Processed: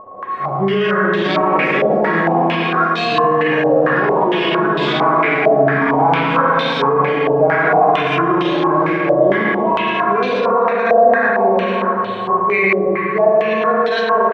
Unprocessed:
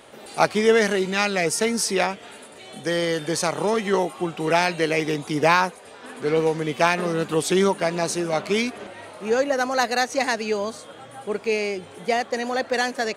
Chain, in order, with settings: harmonic-percussive split percussive -18 dB; whine 1200 Hz -30 dBFS; flange 0.57 Hz, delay 9.2 ms, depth 7.2 ms, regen +63%; echo 0.105 s -5 dB; spring tank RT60 3 s, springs 33/59 ms, chirp 30 ms, DRR -5 dB; echoes that change speed 0.793 s, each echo +7 st, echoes 3, each echo -6 dB; speed mistake 48 kHz file played as 44.1 kHz; maximiser +15 dB; stepped low-pass 4.4 Hz 640–3700 Hz; gain -8.5 dB

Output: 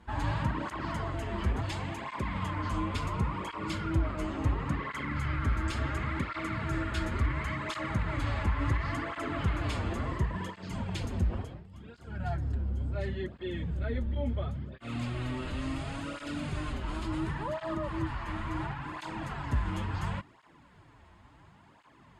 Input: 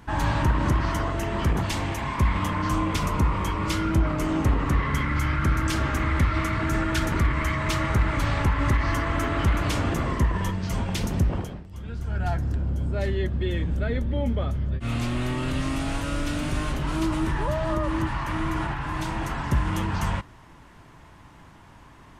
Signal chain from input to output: LPF 7800 Hz 12 dB/oct; notch 5800 Hz, Q 5.5; tape flanging out of phase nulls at 0.71 Hz, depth 7.6 ms; gain -5 dB

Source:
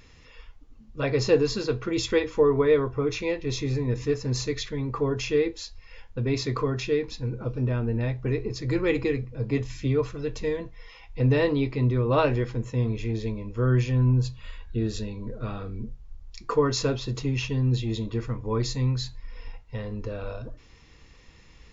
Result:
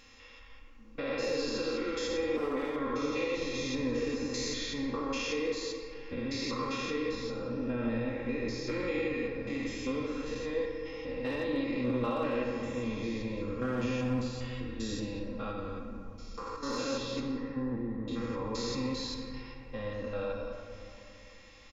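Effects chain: stepped spectrum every 0.2 s; 2.07–2.48 tilt shelf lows +5 dB, about 1200 Hz; hard clip -18 dBFS, distortion -20 dB; low shelf 310 Hz -11 dB; comb 3.7 ms, depth 69%; limiter -27 dBFS, peak gain reduction 11 dB; 15.51–16.63 negative-ratio compressor -41 dBFS, ratio -0.5; 17.2–18.08 elliptic low-pass 1800 Hz, stop band 40 dB; reverb RT60 2.6 s, pre-delay 4 ms, DRR 1.5 dB

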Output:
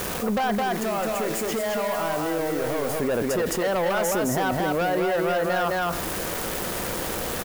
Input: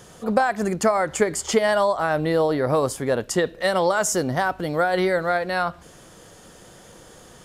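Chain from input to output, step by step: graphic EQ 125/4000/8000 Hz -7/-10/-12 dB; soft clip -22.5 dBFS, distortion -9 dB; 0.55–2.99 resonator 110 Hz, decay 1.2 s, harmonics all, mix 70%; bit-crush 8-bit; high shelf 11000 Hz +8.5 dB; echo 0.214 s -3.5 dB; fast leveller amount 70%

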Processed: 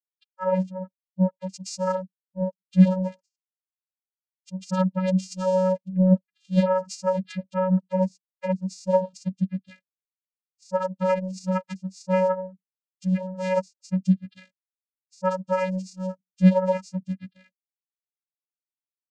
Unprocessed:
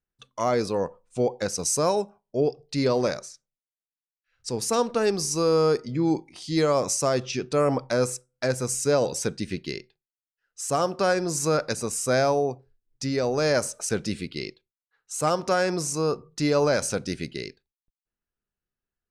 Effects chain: per-bin expansion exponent 3; vocoder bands 8, square 186 Hz; gain +8.5 dB

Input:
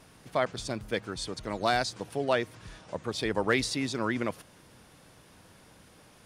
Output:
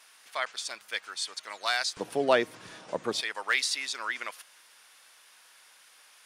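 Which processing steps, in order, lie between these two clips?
HPF 1400 Hz 12 dB/oct, from 1.97 s 240 Hz, from 3.21 s 1400 Hz; gain +4 dB

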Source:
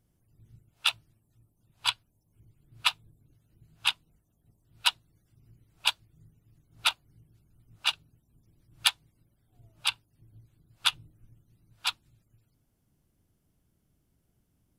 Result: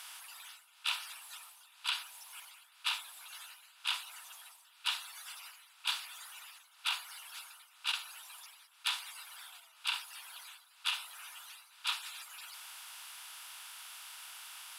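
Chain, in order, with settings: per-bin compression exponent 0.6; HPF 960 Hz 24 dB/oct; reverse; compressor 5:1, threshold -45 dBFS, peak gain reduction 25.5 dB; reverse; gain +9.5 dB

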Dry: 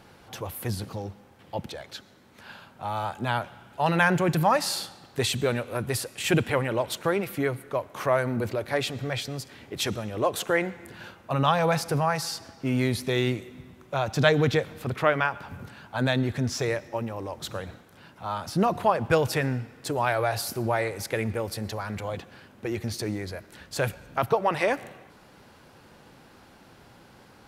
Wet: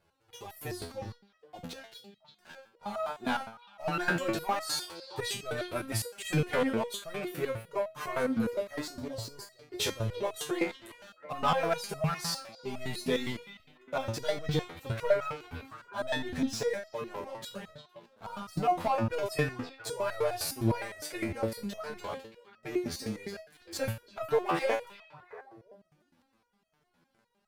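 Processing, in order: 8.81–9.52 elliptic band-stop 1100–4300 Hz; sample leveller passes 3; on a send: delay with a stepping band-pass 0.335 s, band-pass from 3300 Hz, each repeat -1.4 oct, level -11.5 dB; on the sum: flange 0.2 Hz, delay 1.9 ms, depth 3.6 ms, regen -37%; stepped resonator 9.8 Hz 84–640 Hz

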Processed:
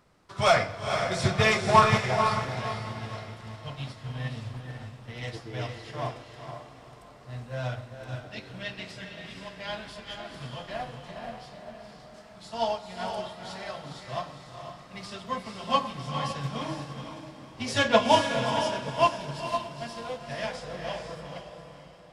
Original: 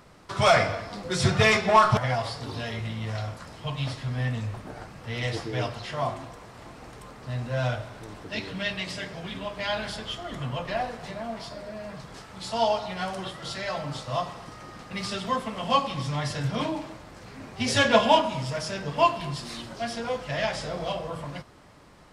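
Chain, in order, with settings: on a send: diffused feedback echo 0.474 s, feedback 42%, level -3.5 dB; on the sum: upward expander 1.5:1, over -35 dBFS

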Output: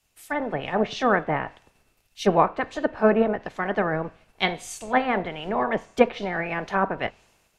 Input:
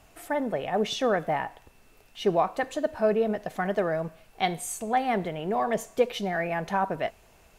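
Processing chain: spectral limiter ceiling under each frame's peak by 13 dB; treble ducked by the level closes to 2200 Hz, closed at -23.5 dBFS; three-band expander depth 70%; gain +3 dB

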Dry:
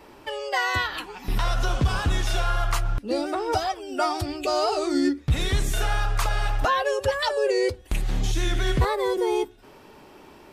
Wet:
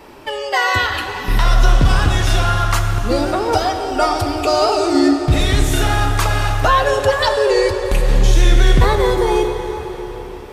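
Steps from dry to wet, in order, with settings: plate-style reverb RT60 4.7 s, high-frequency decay 0.75×, DRR 4.5 dB; gain +7.5 dB

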